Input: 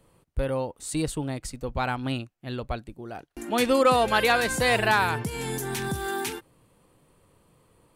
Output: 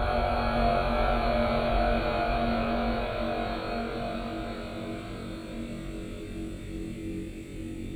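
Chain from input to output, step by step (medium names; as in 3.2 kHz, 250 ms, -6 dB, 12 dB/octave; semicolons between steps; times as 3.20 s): Paulstretch 41×, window 0.25 s, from 2.72 s; word length cut 12-bit, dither none; ever faster or slower copies 563 ms, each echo -1 st, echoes 3, each echo -6 dB; flutter echo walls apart 3.7 m, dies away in 0.63 s; reverberation, pre-delay 3 ms, DRR 10.5 dB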